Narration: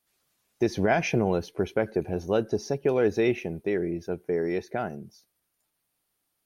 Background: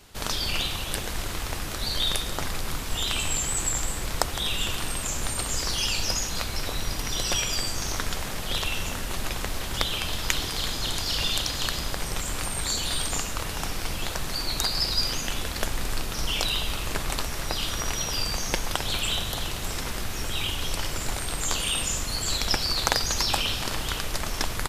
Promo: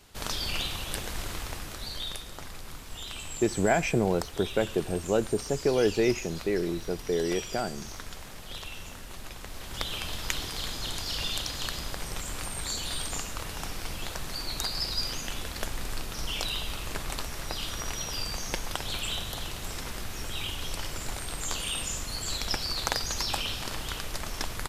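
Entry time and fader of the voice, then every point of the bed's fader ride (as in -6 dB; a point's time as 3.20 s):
2.80 s, -1.0 dB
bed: 1.33 s -4 dB
2.26 s -12 dB
9.41 s -12 dB
9.93 s -5.5 dB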